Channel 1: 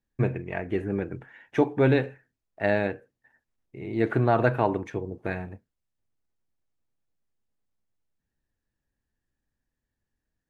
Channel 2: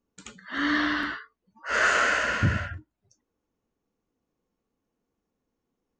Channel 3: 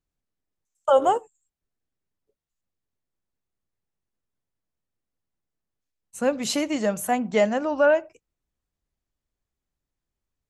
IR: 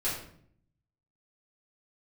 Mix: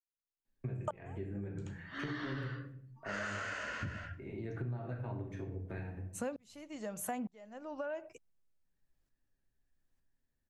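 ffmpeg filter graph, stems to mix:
-filter_complex "[0:a]acrossover=split=180[a][b];[b]acompressor=threshold=-43dB:ratio=2.5[c];[a][c]amix=inputs=2:normalize=0,flanger=delay=3.1:depth=3.4:regen=-71:speed=1.6:shape=triangular,adelay=450,volume=-5dB,asplit=2[d][e];[e]volume=-3.5dB[f];[1:a]adelay=1400,volume=-11dB,asplit=2[g][h];[h]volume=-19.5dB[i];[2:a]acompressor=threshold=-19dB:ratio=6,aeval=exprs='val(0)*pow(10,-36*if(lt(mod(-1.1*n/s,1),2*abs(-1.1)/1000),1-mod(-1.1*n/s,1)/(2*abs(-1.1)/1000),(mod(-1.1*n/s,1)-2*abs(-1.1)/1000)/(1-2*abs(-1.1)/1000))/20)':c=same,volume=1.5dB,asplit=2[j][k];[k]apad=whole_len=325961[l];[g][l]sidechaincompress=threshold=-35dB:ratio=8:attack=16:release=1180[m];[3:a]atrim=start_sample=2205[n];[f][i]amix=inputs=2:normalize=0[o];[o][n]afir=irnorm=-1:irlink=0[p];[d][m][j][p]amix=inputs=4:normalize=0,acompressor=threshold=-37dB:ratio=5"

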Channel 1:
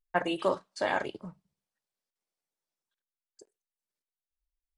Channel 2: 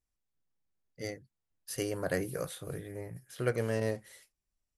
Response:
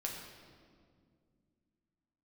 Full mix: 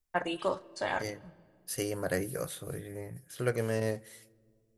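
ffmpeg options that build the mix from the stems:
-filter_complex "[0:a]asubboost=boost=11.5:cutoff=120,volume=-3.5dB,asplit=2[a][b];[b]volume=-17dB[c];[1:a]volume=0dB,asplit=3[d][e][f];[e]volume=-23.5dB[g];[f]apad=whole_len=210415[h];[a][h]sidechaincompress=threshold=-43dB:ratio=8:attack=16:release=1330[i];[2:a]atrim=start_sample=2205[j];[c][g]amix=inputs=2:normalize=0[k];[k][j]afir=irnorm=-1:irlink=0[l];[i][d][l]amix=inputs=3:normalize=0,highshelf=f=9.5k:g=6"

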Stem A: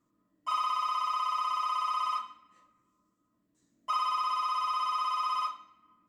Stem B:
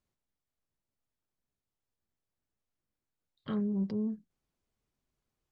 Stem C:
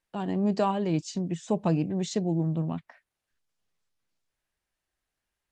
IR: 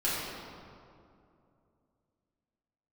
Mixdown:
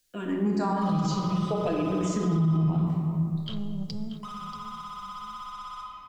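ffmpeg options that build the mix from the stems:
-filter_complex "[0:a]asoftclip=type=tanh:threshold=-32dB,alimiter=level_in=13.5dB:limit=-24dB:level=0:latency=1,volume=-13.5dB,acompressor=threshold=-47dB:ratio=4,adelay=350,volume=2.5dB,asplit=2[a][b];[b]volume=-7dB[c];[1:a]asoftclip=type=tanh:threshold=-28.5dB,aexciter=amount=9:drive=6.3:freq=2.6k,volume=-3.5dB,asplit=3[d][e][f];[e]volume=-16.5dB[g];[f]volume=-10.5dB[h];[2:a]asplit=2[i][j];[j]afreqshift=-0.58[k];[i][k]amix=inputs=2:normalize=1,volume=-2dB,asplit=2[l][m];[m]volume=-3.5dB[n];[3:a]atrim=start_sample=2205[o];[c][g][n]amix=inputs=3:normalize=0[p];[p][o]afir=irnorm=-1:irlink=0[q];[h]aecho=0:1:634|1268|1902|2536:1|0.28|0.0784|0.022[r];[a][d][l][q][r]amix=inputs=5:normalize=0,asubboost=boost=10:cutoff=100,alimiter=limit=-18dB:level=0:latency=1:release=44"

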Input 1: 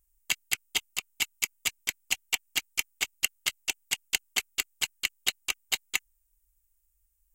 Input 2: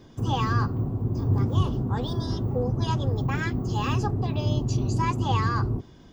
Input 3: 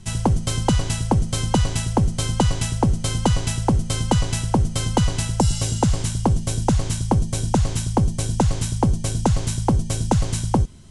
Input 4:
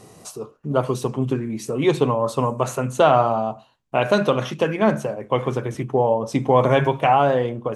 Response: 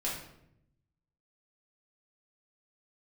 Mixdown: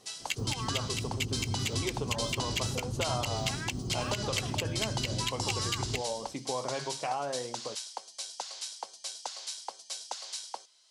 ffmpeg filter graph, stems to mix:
-filter_complex "[0:a]bandpass=f=3.6k:t=q:w=0.59:csg=0,volume=-1.5dB[a];[1:a]alimiter=limit=-20.5dB:level=0:latency=1:release=469,acontrast=79,adelay=200,volume=-12.5dB[b];[2:a]highpass=f=620:w=0.5412,highpass=f=620:w=1.3066,equalizer=f=4.6k:w=1.2:g=15,volume=-16dB[c];[3:a]acompressor=threshold=-18dB:ratio=2.5,lowshelf=f=210:g=-10,volume=-12.5dB[d];[a][b][c][d]amix=inputs=4:normalize=0,alimiter=limit=-18.5dB:level=0:latency=1:release=67"

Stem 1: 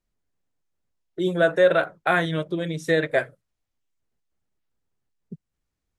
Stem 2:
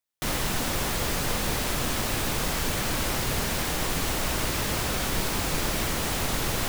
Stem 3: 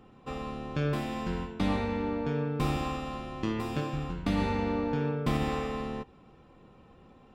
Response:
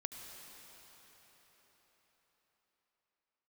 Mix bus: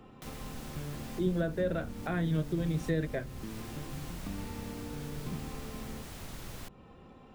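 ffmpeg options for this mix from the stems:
-filter_complex "[0:a]volume=-1dB[a];[1:a]volume=-14dB[b];[2:a]acompressor=threshold=-48dB:ratio=2,volume=2dB[c];[a][b][c]amix=inputs=3:normalize=0,acrossover=split=290[d][e];[e]acompressor=threshold=-50dB:ratio=2[f];[d][f]amix=inputs=2:normalize=0"

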